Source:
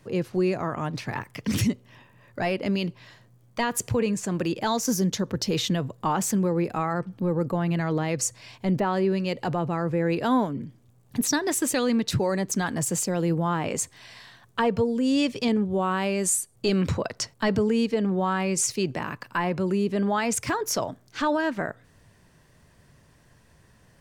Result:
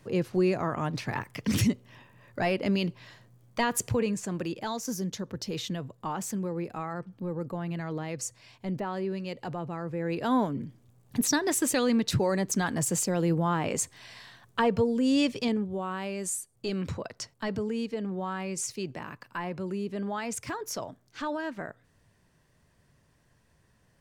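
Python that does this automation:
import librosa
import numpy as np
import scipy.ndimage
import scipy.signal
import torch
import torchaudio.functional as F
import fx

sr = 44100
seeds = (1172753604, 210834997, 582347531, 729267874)

y = fx.gain(x, sr, db=fx.line((3.73, -1.0), (4.75, -8.5), (9.93, -8.5), (10.47, -1.5), (15.29, -1.5), (15.81, -8.5)))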